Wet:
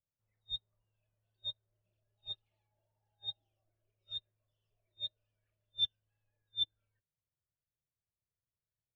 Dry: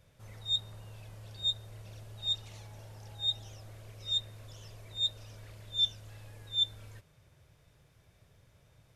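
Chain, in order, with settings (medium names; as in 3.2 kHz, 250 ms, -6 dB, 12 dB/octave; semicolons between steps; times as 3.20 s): spectral noise reduction 10 dB; distance through air 370 m; upward expansion 2.5:1, over -54 dBFS; trim +6.5 dB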